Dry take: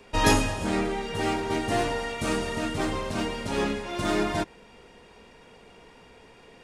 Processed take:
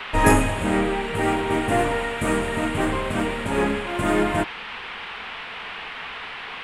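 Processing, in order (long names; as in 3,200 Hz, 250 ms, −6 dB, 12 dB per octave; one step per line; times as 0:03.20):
flat-topped bell 4,300 Hz −15.5 dB 1.3 octaves
noise in a band 730–3,100 Hz −40 dBFS
level +5 dB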